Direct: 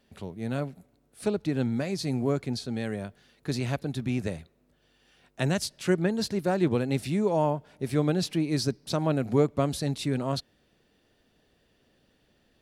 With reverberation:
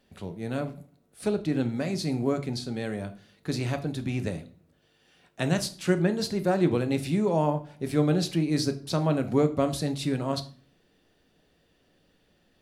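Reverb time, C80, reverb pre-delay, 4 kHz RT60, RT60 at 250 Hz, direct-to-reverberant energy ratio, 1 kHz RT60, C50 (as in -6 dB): 0.45 s, 19.5 dB, 4 ms, 0.35 s, 0.65 s, 8.0 dB, 0.40 s, 15.0 dB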